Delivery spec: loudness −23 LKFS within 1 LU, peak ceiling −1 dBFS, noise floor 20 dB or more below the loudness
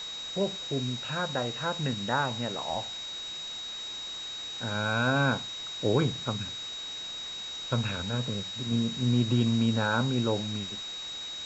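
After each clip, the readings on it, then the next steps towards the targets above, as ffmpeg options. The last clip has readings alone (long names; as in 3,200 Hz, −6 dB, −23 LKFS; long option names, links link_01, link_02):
interfering tone 3,800 Hz; level of the tone −36 dBFS; background noise floor −39 dBFS; target noise floor −50 dBFS; integrated loudness −30.0 LKFS; sample peak −13.0 dBFS; target loudness −23.0 LKFS
→ -af "bandreject=frequency=3800:width=30"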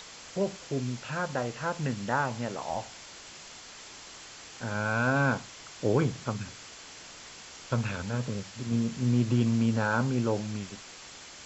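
interfering tone none found; background noise floor −48 dBFS; target noise floor −50 dBFS
→ -af "afftdn=noise_reduction=6:noise_floor=-48"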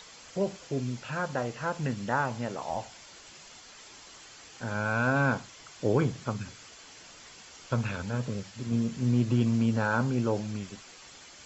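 background noise floor −51 dBFS; integrated loudness −30.0 LKFS; sample peak −13.0 dBFS; target loudness −23.0 LKFS
→ -af "volume=7dB"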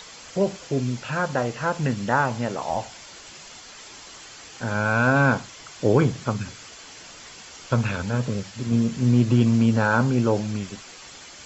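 integrated loudness −23.0 LKFS; sample peak −6.0 dBFS; background noise floor −44 dBFS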